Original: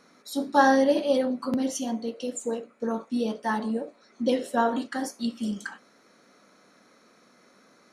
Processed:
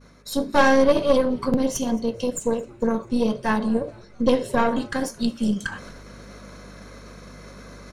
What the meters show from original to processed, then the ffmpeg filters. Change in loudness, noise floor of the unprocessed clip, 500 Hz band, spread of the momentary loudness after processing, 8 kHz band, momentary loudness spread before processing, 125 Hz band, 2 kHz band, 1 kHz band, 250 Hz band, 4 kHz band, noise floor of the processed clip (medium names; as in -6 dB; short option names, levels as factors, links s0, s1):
+4.0 dB, -60 dBFS, +5.0 dB, 12 LU, +4.0 dB, 12 LU, +11.0 dB, +4.5 dB, +1.0 dB, +4.5 dB, +4.5 dB, -47 dBFS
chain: -filter_complex "[0:a]asplit=2[s0][s1];[s1]acompressor=threshold=0.0224:ratio=6,volume=0.841[s2];[s0][s2]amix=inputs=2:normalize=0,agate=range=0.0224:threshold=0.00398:ratio=3:detection=peak,aeval=exprs='0.501*(cos(1*acos(clip(val(0)/0.501,-1,1)))-cos(1*PI/2))+0.0631*(cos(6*acos(clip(val(0)/0.501,-1,1)))-cos(6*PI/2))':c=same,equalizer=f=160:t=o:w=1.1:g=11,aecho=1:1:1.9:0.33,aeval=exprs='val(0)+0.00158*(sin(2*PI*50*n/s)+sin(2*PI*2*50*n/s)/2+sin(2*PI*3*50*n/s)/3+sin(2*PI*4*50*n/s)/4+sin(2*PI*5*50*n/s)/5)':c=same,areverse,acompressor=mode=upward:threshold=0.0316:ratio=2.5,areverse,asplit=5[s3][s4][s5][s6][s7];[s4]adelay=220,afreqshift=-110,volume=0.0631[s8];[s5]adelay=440,afreqshift=-220,volume=0.0355[s9];[s6]adelay=660,afreqshift=-330,volume=0.0197[s10];[s7]adelay=880,afreqshift=-440,volume=0.0111[s11];[s3][s8][s9][s10][s11]amix=inputs=5:normalize=0"